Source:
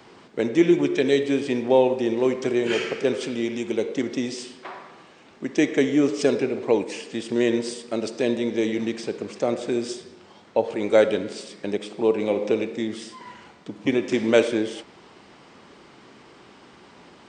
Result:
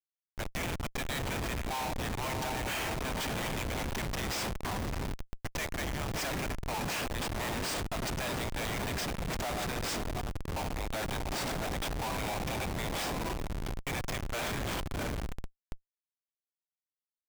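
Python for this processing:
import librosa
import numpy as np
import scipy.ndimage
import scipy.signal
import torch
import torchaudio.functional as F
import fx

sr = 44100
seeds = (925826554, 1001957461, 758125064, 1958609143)

p1 = scipy.signal.sosfilt(scipy.signal.butter(12, 670.0, 'highpass', fs=sr, output='sos'), x)
p2 = fx.high_shelf(p1, sr, hz=4600.0, db=10.0)
p3 = fx.rider(p2, sr, range_db=3, speed_s=0.5)
p4 = p3 + fx.echo_diffused(p3, sr, ms=678, feedback_pct=51, wet_db=-7, dry=0)
y = fx.schmitt(p4, sr, flips_db=-31.0)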